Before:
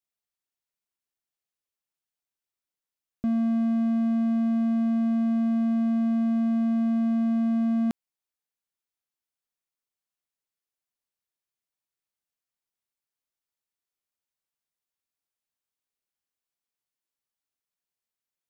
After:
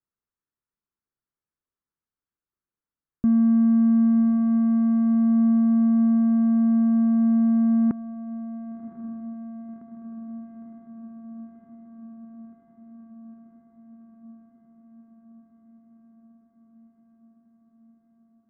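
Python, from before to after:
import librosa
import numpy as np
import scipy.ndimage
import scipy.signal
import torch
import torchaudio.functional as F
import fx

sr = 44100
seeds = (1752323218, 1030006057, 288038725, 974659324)

y = scipy.signal.sosfilt(scipy.signal.butter(4, 1400.0, 'lowpass', fs=sr, output='sos'), x)
y = fx.peak_eq(y, sr, hz=680.0, db=-12.0, octaves=1.0)
y = fx.echo_diffused(y, sr, ms=1096, feedback_pct=74, wet_db=-11.5)
y = y * librosa.db_to_amplitude(7.0)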